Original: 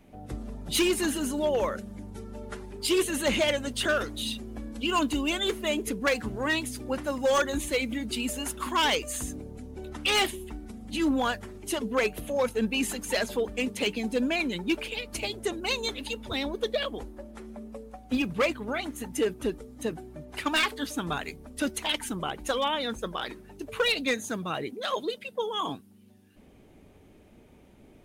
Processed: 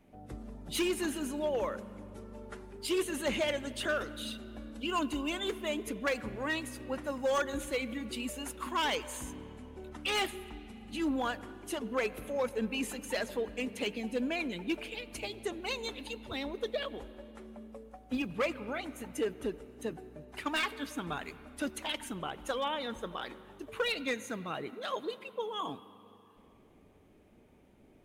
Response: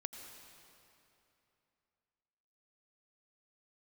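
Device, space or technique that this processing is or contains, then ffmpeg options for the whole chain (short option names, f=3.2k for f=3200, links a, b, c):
filtered reverb send: -filter_complex "[0:a]asplit=2[a][b];[b]highpass=f=200:p=1,lowpass=3.2k[c];[1:a]atrim=start_sample=2205[d];[c][d]afir=irnorm=-1:irlink=0,volume=-5dB[e];[a][e]amix=inputs=2:normalize=0,volume=-8.5dB"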